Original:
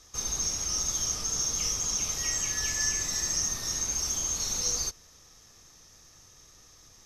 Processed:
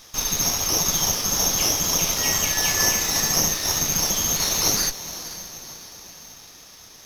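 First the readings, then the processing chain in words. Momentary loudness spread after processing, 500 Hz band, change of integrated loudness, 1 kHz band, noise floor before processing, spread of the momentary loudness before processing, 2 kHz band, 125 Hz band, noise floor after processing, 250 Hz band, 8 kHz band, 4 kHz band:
15 LU, +14.0 dB, +8.0 dB, +14.0 dB, -56 dBFS, 2 LU, +10.5 dB, +10.0 dB, -46 dBFS, +14.0 dB, +6.5 dB, +10.0 dB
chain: weighting filter D; diffused feedback echo 0.496 s, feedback 50%, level -13 dB; running maximum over 3 samples; gain +2 dB

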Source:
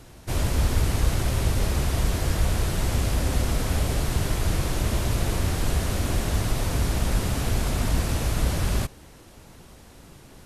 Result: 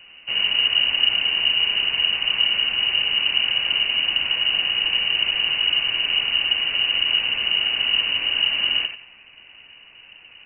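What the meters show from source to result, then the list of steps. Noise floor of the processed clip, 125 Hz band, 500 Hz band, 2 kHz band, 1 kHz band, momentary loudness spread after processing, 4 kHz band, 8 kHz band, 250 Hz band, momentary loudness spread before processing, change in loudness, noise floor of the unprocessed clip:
-48 dBFS, under -25 dB, -10.5 dB, +13.5 dB, -4.0 dB, 2 LU, +20.5 dB, under -40 dB, -16.0 dB, 2 LU, +7.5 dB, -48 dBFS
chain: notch 1600 Hz, Q 21; on a send: tape echo 88 ms, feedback 36%, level -5 dB, low-pass 1700 Hz; on the sum: inverted band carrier 2900 Hz

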